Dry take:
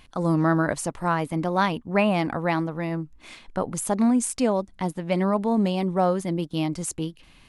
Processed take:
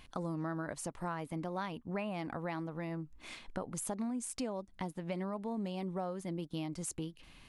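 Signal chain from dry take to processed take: compression 4:1, threshold -33 dBFS, peak gain reduction 14.5 dB; trim -4 dB

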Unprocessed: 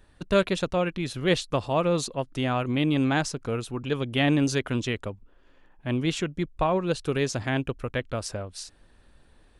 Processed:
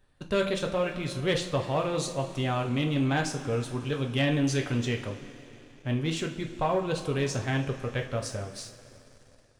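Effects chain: two-slope reverb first 0.33 s, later 4 s, from -18 dB, DRR 2.5 dB; waveshaping leveller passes 1; trim -7.5 dB

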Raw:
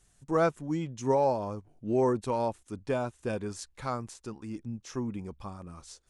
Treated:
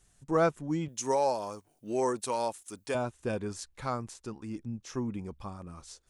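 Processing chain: 0.88–2.95 s: RIAA curve recording

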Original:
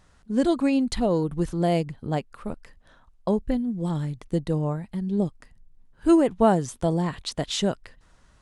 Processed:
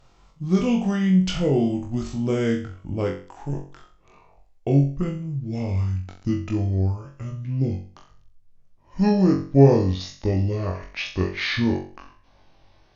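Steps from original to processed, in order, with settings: gliding tape speed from 73% -> 57%; flutter echo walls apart 3.7 m, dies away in 0.41 s

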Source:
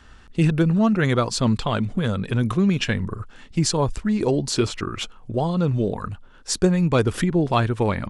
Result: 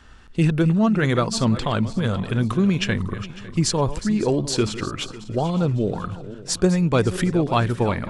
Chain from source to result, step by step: backward echo that repeats 276 ms, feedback 57%, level -14 dB

